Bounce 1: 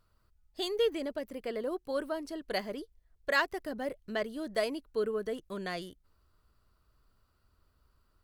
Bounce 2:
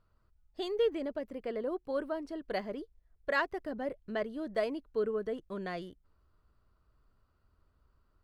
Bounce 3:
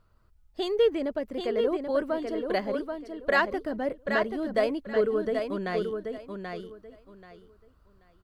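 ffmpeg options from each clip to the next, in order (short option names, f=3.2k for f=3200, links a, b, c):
-af "lowpass=f=1.7k:p=1"
-af "aecho=1:1:783|1566|2349:0.531|0.117|0.0257,volume=6.5dB"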